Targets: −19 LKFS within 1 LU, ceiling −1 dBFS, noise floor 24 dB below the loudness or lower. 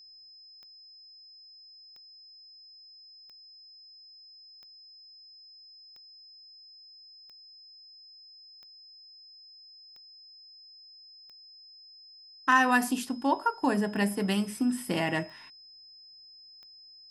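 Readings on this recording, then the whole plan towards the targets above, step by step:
number of clicks 13; interfering tone 5,100 Hz; level of the tone −50 dBFS; integrated loudness −27.5 LKFS; sample peak −10.0 dBFS; target loudness −19.0 LKFS
→ click removal
notch filter 5,100 Hz, Q 30
level +8.5 dB

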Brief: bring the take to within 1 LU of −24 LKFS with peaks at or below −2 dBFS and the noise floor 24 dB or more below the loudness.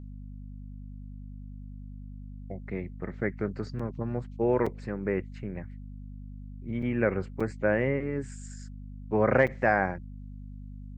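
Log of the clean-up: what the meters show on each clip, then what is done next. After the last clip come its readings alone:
number of dropouts 5; longest dropout 5.0 ms; mains hum 50 Hz; hum harmonics up to 250 Hz; level of the hum −39 dBFS; integrated loudness −29.5 LKFS; sample peak −9.0 dBFS; target loudness −24.0 LKFS
→ repair the gap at 0:03.79/0:04.66/0:06.82/0:07.40/0:09.47, 5 ms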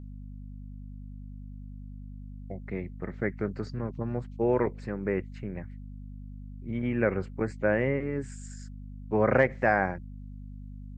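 number of dropouts 0; mains hum 50 Hz; hum harmonics up to 250 Hz; level of the hum −39 dBFS
→ hum removal 50 Hz, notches 5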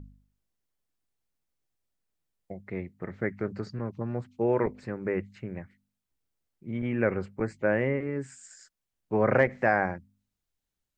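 mains hum none found; integrated loudness −29.5 LKFS; sample peak −9.5 dBFS; target loudness −24.0 LKFS
→ level +5.5 dB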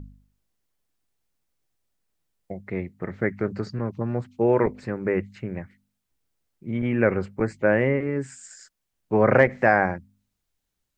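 integrated loudness −24.0 LKFS; sample peak −4.0 dBFS; background noise floor −80 dBFS

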